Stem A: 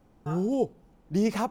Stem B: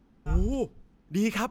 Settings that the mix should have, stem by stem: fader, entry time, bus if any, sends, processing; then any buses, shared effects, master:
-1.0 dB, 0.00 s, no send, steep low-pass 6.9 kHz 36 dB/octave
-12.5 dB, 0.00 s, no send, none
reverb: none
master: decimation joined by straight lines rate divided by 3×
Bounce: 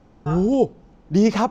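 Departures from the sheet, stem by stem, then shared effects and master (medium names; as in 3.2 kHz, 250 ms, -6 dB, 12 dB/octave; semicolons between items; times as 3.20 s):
stem A -1.0 dB -> +8.0 dB; master: missing decimation joined by straight lines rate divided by 3×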